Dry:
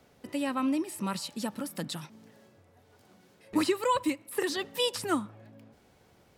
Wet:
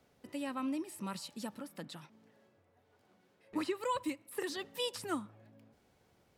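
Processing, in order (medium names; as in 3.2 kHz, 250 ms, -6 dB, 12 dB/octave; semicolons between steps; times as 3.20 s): 1.58–3.81 s: tone controls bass -4 dB, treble -7 dB; trim -8 dB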